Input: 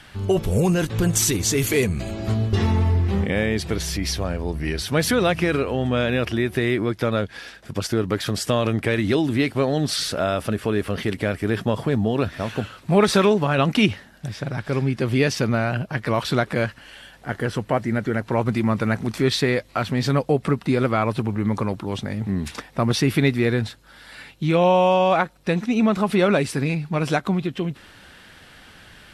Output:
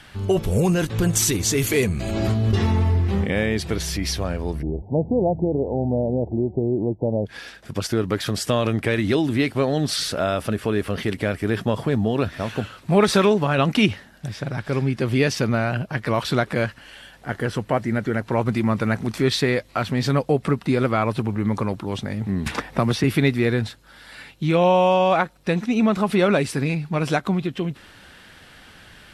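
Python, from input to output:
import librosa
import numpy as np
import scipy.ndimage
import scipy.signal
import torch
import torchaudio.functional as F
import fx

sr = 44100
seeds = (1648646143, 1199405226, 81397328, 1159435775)

y = fx.pre_swell(x, sr, db_per_s=28.0, at=(1.84, 2.51), fade=0.02)
y = fx.steep_lowpass(y, sr, hz=890.0, slope=96, at=(4.61, 7.25), fade=0.02)
y = fx.band_squash(y, sr, depth_pct=70, at=(22.46, 23.04))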